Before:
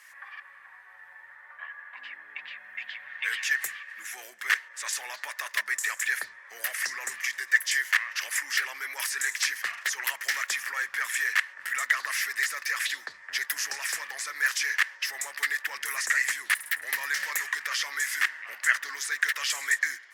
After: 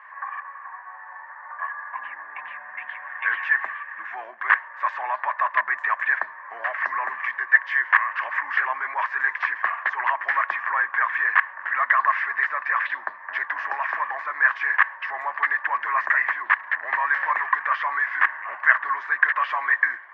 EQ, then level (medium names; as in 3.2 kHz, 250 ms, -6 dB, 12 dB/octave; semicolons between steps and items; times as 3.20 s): cabinet simulation 190–2300 Hz, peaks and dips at 230 Hz +6 dB, 350 Hz +5 dB, 1.1 kHz +8 dB, 1.6 kHz +8 dB; high-order bell 820 Hz +13 dB 1.1 oct; +1.0 dB